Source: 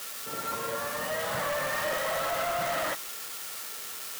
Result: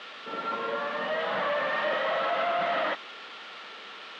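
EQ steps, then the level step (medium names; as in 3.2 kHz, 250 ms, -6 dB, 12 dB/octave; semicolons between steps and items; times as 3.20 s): elliptic band-pass 200–3400 Hz, stop band 60 dB; +3.0 dB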